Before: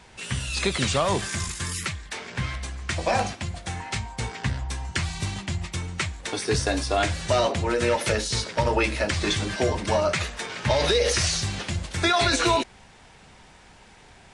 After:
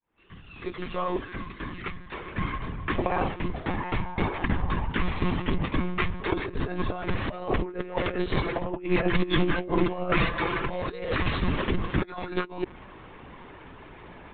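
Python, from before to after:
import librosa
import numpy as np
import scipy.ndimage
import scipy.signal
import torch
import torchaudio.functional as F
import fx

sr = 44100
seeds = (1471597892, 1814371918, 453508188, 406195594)

y = fx.fade_in_head(x, sr, length_s=4.51)
y = scipy.signal.sosfilt(scipy.signal.butter(2, 2600.0, 'lowpass', fs=sr, output='sos'), y)
y = fx.small_body(y, sr, hz=(330.0, 1100.0), ring_ms=45, db=12)
y = fx.lpc_monotone(y, sr, seeds[0], pitch_hz=180.0, order=16)
y = fx.over_compress(y, sr, threshold_db=-26.0, ratio=-0.5)
y = fx.comb(y, sr, ms=5.9, depth=0.62, at=(8.42, 10.8))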